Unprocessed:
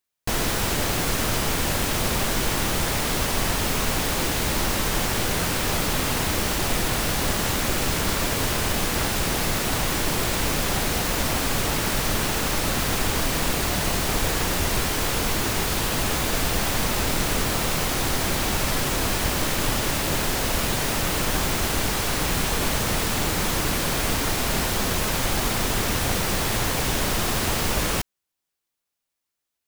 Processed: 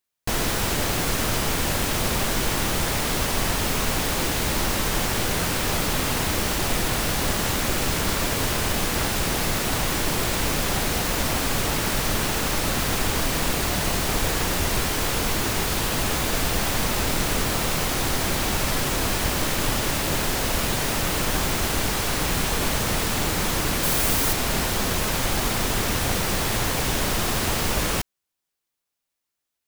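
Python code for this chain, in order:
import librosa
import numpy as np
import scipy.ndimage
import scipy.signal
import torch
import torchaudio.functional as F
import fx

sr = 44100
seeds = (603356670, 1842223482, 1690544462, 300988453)

y = fx.high_shelf(x, sr, hz=8600.0, db=9.0, at=(23.83, 24.33))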